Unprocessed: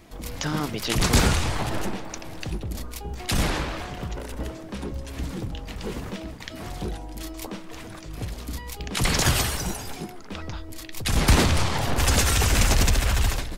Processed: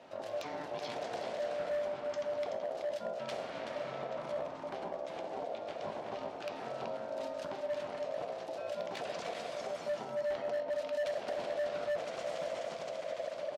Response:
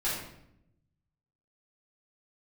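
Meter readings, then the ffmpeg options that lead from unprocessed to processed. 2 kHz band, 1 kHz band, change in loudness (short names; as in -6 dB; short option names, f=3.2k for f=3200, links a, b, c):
-16.5 dB, -10.0 dB, -13.0 dB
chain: -filter_complex "[0:a]acompressor=threshold=-34dB:ratio=10,aecho=1:1:378:0.422,asplit=2[a][b];[1:a]atrim=start_sample=2205[c];[b][c]afir=irnorm=-1:irlink=0,volume=-12dB[d];[a][d]amix=inputs=2:normalize=0,aeval=exprs='val(0)*sin(2*PI*590*n/s)':c=same,highpass=130,lowpass=4.5k,equalizer=f=690:t=o:w=0.32:g=4.5,volume=26dB,asoftclip=hard,volume=-26dB,volume=-4.5dB"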